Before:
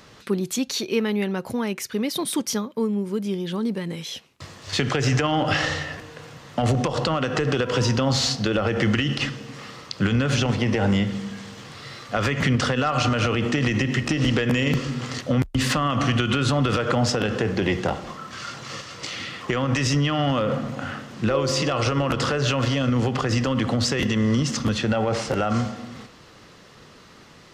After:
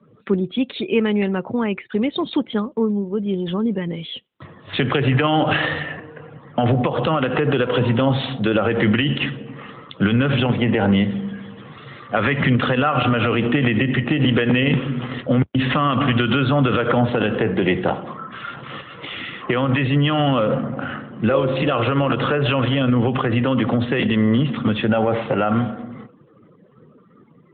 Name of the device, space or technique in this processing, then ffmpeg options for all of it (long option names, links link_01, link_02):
mobile call with aggressive noise cancelling: -filter_complex "[0:a]asettb=1/sr,asplit=3[link_01][link_02][link_03];[link_01]atrim=end=11.844[link_04];[link_02]atrim=start=11.84:end=12.33,asetpts=PTS-STARTPTS,afade=type=in:duration=0.004:curve=qsin,afade=type=out:start_time=0.486:duration=0.004:curve=qsin,adynamicequalizer=threshold=0.0112:dfrequency=2000:dqfactor=3.4:tfrequency=2000:tqfactor=3.4:attack=5:release=100:ratio=0.375:range=1.5:mode=boostabove:tftype=bell[link_05];[link_03]atrim=start=12.326[link_06];[link_04][link_05]acrossfade=duration=0.004:curve1=hsin:curve2=qsin[link_07];[link_07][link_06]acrossfade=duration=0.004:curve1=qsin:curve2=hsin,highpass=110,afftdn=noise_reduction=25:noise_floor=-43,volume=5dB" -ar 8000 -c:a libopencore_amrnb -b:a 12200